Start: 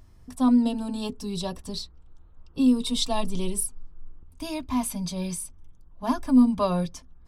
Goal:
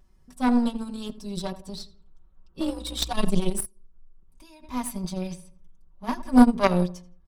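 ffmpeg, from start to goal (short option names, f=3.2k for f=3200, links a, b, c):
-filter_complex "[0:a]asettb=1/sr,asplit=3[a][b][c];[a]atrim=end=5.214[d];[b]atrim=start=5.21:end=6.15,asetpts=PTS-STARTPTS,afade=t=in:d=0.004:c=qsin,afade=t=out:st=0.936:d=0.004:c=qsin,acrossover=split=5400[e][f];[f]acompressor=threshold=-49dB:ratio=4:attack=1:release=60[g];[e][g]amix=inputs=2:normalize=0[h];[c]atrim=start=6.146[i];[d][h]acrossfade=d=0.004:c1=hsin:c2=qsin[j];[j][i]acrossfade=d=0.004:c1=qsin:c2=hsin,asplit=2[k][l];[l]adelay=84,lowpass=f=1.9k:p=1,volume=-12dB,asplit=2[m][n];[n]adelay=84,lowpass=f=1.9k:p=1,volume=0.44,asplit=2[o][p];[p]adelay=84,lowpass=f=1.9k:p=1,volume=0.44,asplit=2[q][r];[r]adelay=84,lowpass=f=1.9k:p=1,volume=0.44[s];[m][o][q][s]amix=inputs=4:normalize=0[t];[k][t]amix=inputs=2:normalize=0,asplit=3[u][v][w];[u]afade=t=out:st=3.64:d=0.02[x];[v]acompressor=threshold=-41dB:ratio=5,afade=t=in:st=3.64:d=0.02,afade=t=out:st=4.62:d=0.02[y];[w]afade=t=in:st=4.62:d=0.02[z];[x][y][z]amix=inputs=3:normalize=0,asplit=2[aa][ab];[ab]aeval=exprs='sgn(val(0))*max(abs(val(0))-0.0141,0)':c=same,volume=-9.5dB[ac];[aa][ac]amix=inputs=2:normalize=0,asplit=3[ad][ae][af];[ad]afade=t=out:st=2.59:d=0.02[ag];[ae]afreqshift=45,afade=t=in:st=2.59:d=0.02,afade=t=out:st=3.12:d=0.02[ah];[af]afade=t=in:st=3.12:d=0.02[ai];[ag][ah][ai]amix=inputs=3:normalize=0,aecho=1:1:5.3:0.8,aeval=exprs='0.531*(cos(1*acos(clip(val(0)/0.531,-1,1)))-cos(1*PI/2))+0.168*(cos(3*acos(clip(val(0)/0.531,-1,1)))-cos(3*PI/2))+0.0188*(cos(5*acos(clip(val(0)/0.531,-1,1)))-cos(5*PI/2))+0.015*(cos(6*acos(clip(val(0)/0.531,-1,1)))-cos(6*PI/2))':c=same,volume=4dB"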